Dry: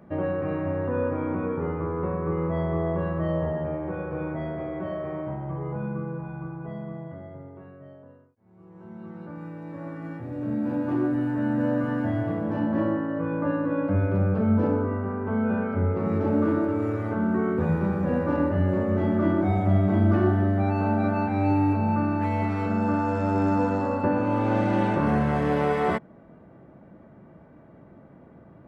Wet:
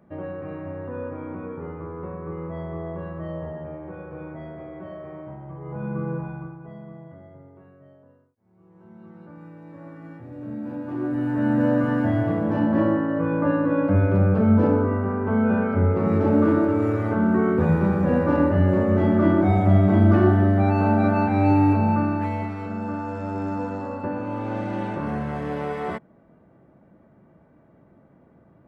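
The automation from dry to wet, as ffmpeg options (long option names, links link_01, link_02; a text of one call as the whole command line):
ffmpeg -i in.wav -af "volume=14.5dB,afade=type=in:start_time=5.61:duration=0.52:silence=0.281838,afade=type=out:start_time=6.13:duration=0.45:silence=0.316228,afade=type=in:start_time=10.93:duration=0.58:silence=0.334965,afade=type=out:start_time=21.77:duration=0.78:silence=0.334965" out.wav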